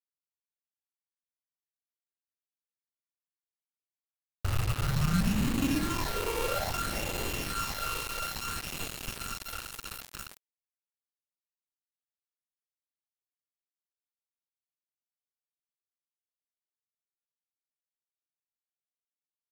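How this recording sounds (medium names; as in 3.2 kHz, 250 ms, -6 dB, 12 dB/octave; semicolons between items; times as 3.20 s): a buzz of ramps at a fixed pitch in blocks of 32 samples; phasing stages 8, 0.59 Hz, lowest notch 210–1700 Hz; a quantiser's noise floor 6-bit, dither none; MP3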